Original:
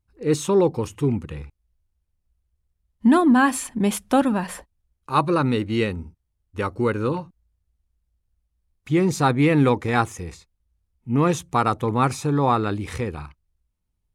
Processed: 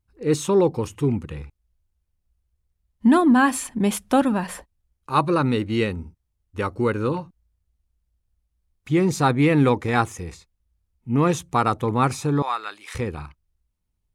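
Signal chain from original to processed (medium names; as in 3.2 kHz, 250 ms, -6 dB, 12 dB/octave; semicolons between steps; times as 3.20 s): 12.42–12.95 s: high-pass 1.2 kHz 12 dB/octave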